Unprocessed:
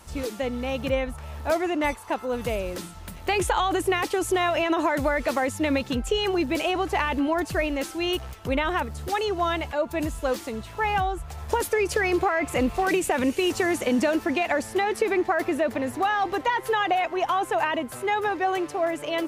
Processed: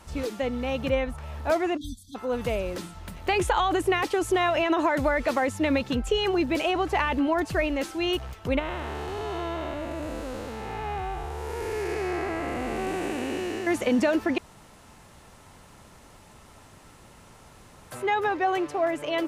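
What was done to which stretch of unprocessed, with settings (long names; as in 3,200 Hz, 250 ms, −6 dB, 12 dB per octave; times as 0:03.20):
0:01.77–0:02.15: time-frequency box erased 290–3,200 Hz
0:08.59–0:13.67: spectrum smeared in time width 469 ms
0:14.38–0:17.91: fill with room tone
whole clip: high-shelf EQ 7,100 Hz −7.5 dB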